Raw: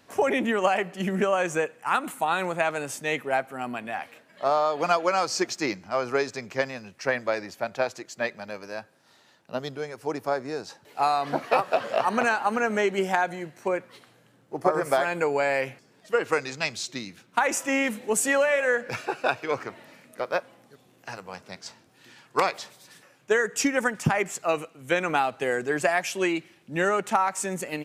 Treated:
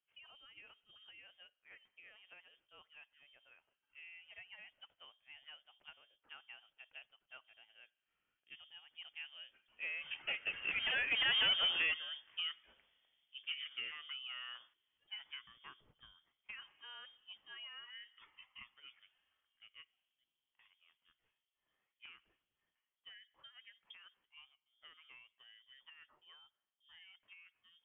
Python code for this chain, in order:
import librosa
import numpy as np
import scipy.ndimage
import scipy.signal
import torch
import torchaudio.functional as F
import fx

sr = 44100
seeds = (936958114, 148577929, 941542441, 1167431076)

y = fx.doppler_pass(x, sr, speed_mps=37, closest_m=7.1, pass_at_s=11.42)
y = 10.0 ** (-29.0 / 20.0) * np.tanh(y / 10.0 ** (-29.0 / 20.0))
y = fx.freq_invert(y, sr, carrier_hz=3400)